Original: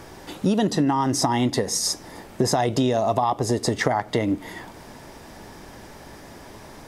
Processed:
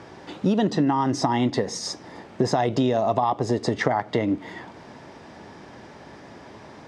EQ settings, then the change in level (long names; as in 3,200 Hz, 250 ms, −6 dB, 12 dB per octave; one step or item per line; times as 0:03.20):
high-pass filter 100 Hz 12 dB per octave
high-frequency loss of the air 120 metres
0.0 dB